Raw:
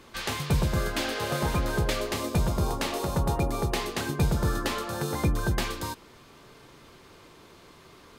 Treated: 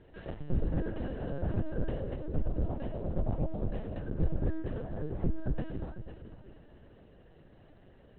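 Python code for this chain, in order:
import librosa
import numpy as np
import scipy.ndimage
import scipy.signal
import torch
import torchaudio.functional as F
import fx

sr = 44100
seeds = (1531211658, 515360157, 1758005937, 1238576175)

p1 = fx.dmg_noise_colour(x, sr, seeds[0], colour='white', level_db=-42.0)
p2 = scipy.signal.lfilter(np.full(38, 1.0 / 38), 1.0, p1)
p3 = p2 + fx.echo_feedback(p2, sr, ms=494, feedback_pct=27, wet_db=-11.5, dry=0)
p4 = fx.lpc_vocoder(p3, sr, seeds[1], excitation='pitch_kept', order=8)
y = p4 * librosa.db_to_amplitude(-3.5)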